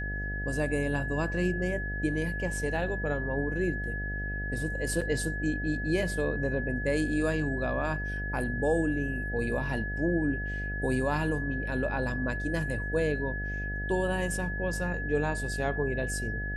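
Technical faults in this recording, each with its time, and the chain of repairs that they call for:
mains buzz 50 Hz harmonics 15 −35 dBFS
whistle 1,700 Hz −35 dBFS
0:05.01–0:05.02: drop-out 5.3 ms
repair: hum removal 50 Hz, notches 15
notch filter 1,700 Hz, Q 30
repair the gap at 0:05.01, 5.3 ms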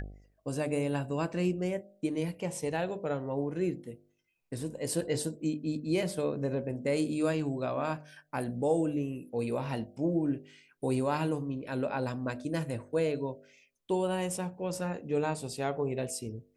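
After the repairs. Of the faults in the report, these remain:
none of them is left

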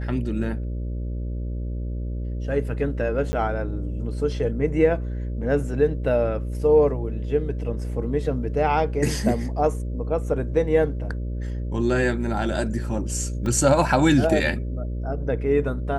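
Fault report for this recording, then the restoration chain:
mains buzz 60 Hz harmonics 10 −28 dBFS
0:03.32–0:03.33: drop-out 10 ms
0:13.46: drop-out 2.2 ms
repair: hum removal 60 Hz, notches 10
repair the gap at 0:03.32, 10 ms
repair the gap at 0:13.46, 2.2 ms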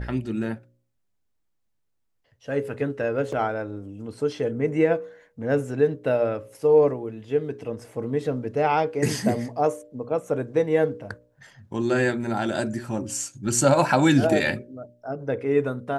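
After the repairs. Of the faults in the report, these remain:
none of them is left

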